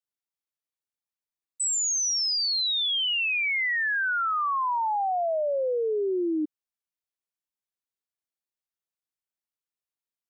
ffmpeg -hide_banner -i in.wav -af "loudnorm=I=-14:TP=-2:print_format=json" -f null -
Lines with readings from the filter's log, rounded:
"input_i" : "-24.6",
"input_tp" : "-23.0",
"input_lra" : "6.0",
"input_thresh" : "-34.8",